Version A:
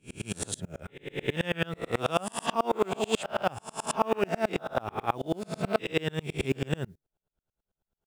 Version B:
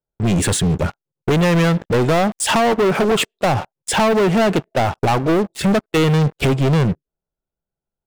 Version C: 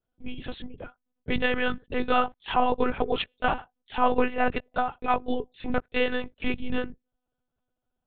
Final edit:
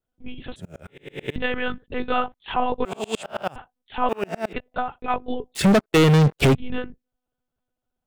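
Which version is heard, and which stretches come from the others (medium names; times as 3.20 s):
C
0.56–1.36 s: from A
2.85–3.56 s: from A
4.09–4.53 s: from A
5.55–6.55 s: from B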